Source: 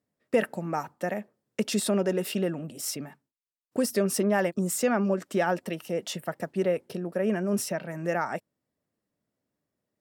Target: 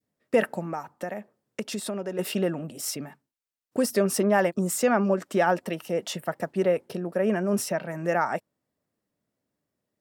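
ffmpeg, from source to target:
ffmpeg -i in.wav -filter_complex "[0:a]adynamicequalizer=threshold=0.0141:dfrequency=920:dqfactor=0.78:tfrequency=920:tqfactor=0.78:attack=5:release=100:ratio=0.375:range=2:mode=boostabove:tftype=bell,asettb=1/sr,asplit=3[link_01][link_02][link_03];[link_01]atrim=end=0.604[link_04];[link_02]atrim=start=0.6:end=2.19,asetpts=PTS-STARTPTS,afade=type=in:duration=0.004:curve=qsin,afade=type=out:start_time=1.586:duration=0.004:curve=qsin,acompressor=threshold=-32dB:ratio=3[link_05];[link_03]atrim=start=2.186[link_06];[link_04][link_05]acrossfade=duration=0.004:curve1=hsin:curve2=qsin[link_07];[link_07][link_06]acrossfade=duration=0.004:curve1=qsin:curve2=hsin,volume=1dB" out.wav

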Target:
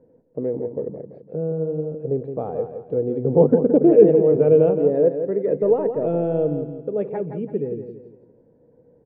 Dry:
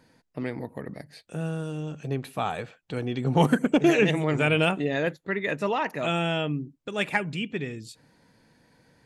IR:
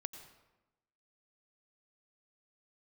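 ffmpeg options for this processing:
-filter_complex "[0:a]asettb=1/sr,asplit=3[link_01][link_02][link_03];[link_01]atrim=end=5.544[link_04];[link_02]atrim=start=5.54:end=6.46,asetpts=PTS-STARTPTS,afade=type=in:duration=0.004:curve=qsin,afade=type=out:start_time=0.916:duration=0.004:curve=qsin,aeval=exprs='0.237*(cos(1*acos(clip(val(0)/0.237,-1,1)))-cos(1*PI/2))+0.0133*(cos(5*acos(clip(val(0)/0.237,-1,1)))-cos(5*PI/2))+0.00376*(cos(8*acos(clip(val(0)/0.237,-1,1)))-cos(8*PI/2))':channel_layout=same[link_05];[link_03]atrim=start=6.456[link_06];[link_04][link_05]acrossfade=duration=0.004:curve1=hsin:curve2=qsin[link_07];[link_07][link_06]acrossfade=duration=0.004:curve1=qsin:curve2=hsin,lowpass=frequency=480:width_type=q:width=4.9,aecho=1:1:168|336|504|672:0.376|0.147|0.0572|0.0223"

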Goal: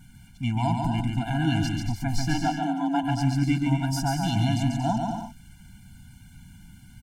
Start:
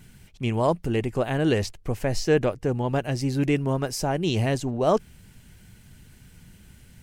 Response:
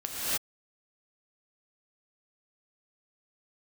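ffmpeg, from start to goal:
-filter_complex "[0:a]asplit=3[link_01][link_02][link_03];[link_01]afade=type=out:start_time=2.33:duration=0.02[link_04];[link_02]afreqshift=150,afade=type=in:start_time=2.33:duration=0.02,afade=type=out:start_time=3.02:duration=0.02[link_05];[link_03]afade=type=in:start_time=3.02:duration=0.02[link_06];[link_04][link_05][link_06]amix=inputs=3:normalize=0,aecho=1:1:140|231|290.2|328.6|353.6:0.631|0.398|0.251|0.158|0.1,afftfilt=real='re*eq(mod(floor(b*sr/1024/340),2),0)':imag='im*eq(mod(floor(b*sr/1024/340),2),0)':win_size=1024:overlap=0.75"

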